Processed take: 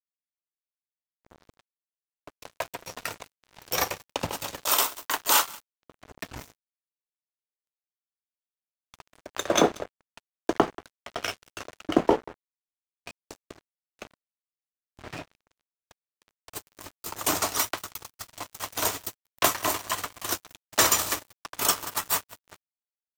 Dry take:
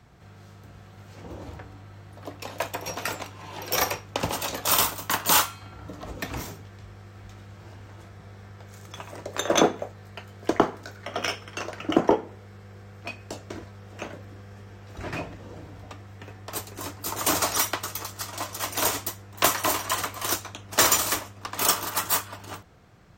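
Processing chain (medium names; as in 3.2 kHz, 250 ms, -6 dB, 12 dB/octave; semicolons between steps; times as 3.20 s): 4.64–5.81 s: high-pass 290 Hz 24 dB/octave; delay 184 ms -16 dB; crossover distortion -33 dBFS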